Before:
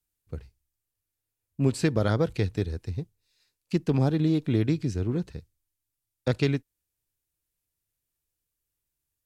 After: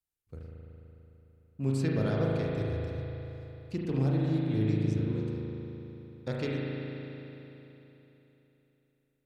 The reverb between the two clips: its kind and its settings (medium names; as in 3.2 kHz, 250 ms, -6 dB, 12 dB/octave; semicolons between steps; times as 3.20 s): spring tank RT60 3.5 s, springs 37 ms, chirp 40 ms, DRR -4 dB; trim -10 dB